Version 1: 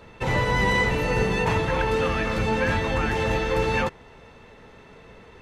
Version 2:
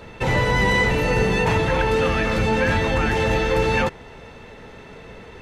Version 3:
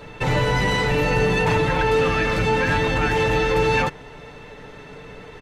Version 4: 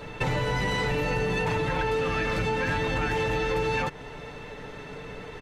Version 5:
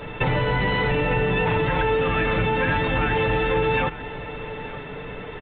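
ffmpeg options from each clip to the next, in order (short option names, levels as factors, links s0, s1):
-filter_complex "[0:a]equalizer=f=1100:t=o:w=0.33:g=-3.5,asplit=2[s0][s1];[s1]alimiter=limit=0.075:level=0:latency=1,volume=1.26[s2];[s0][s2]amix=inputs=2:normalize=0"
-af "asoftclip=type=tanh:threshold=0.251,aecho=1:1:6.8:0.47"
-af "acompressor=threshold=0.0631:ratio=6"
-af "aecho=1:1:900:0.168,aresample=8000,aresample=44100,volume=1.78"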